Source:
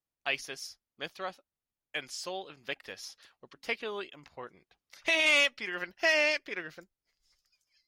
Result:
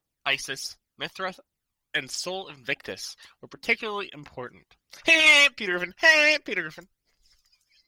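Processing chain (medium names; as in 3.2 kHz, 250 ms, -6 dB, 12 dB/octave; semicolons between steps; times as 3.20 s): phaser 1.4 Hz, delay 1.1 ms, feedback 51%; trim +7 dB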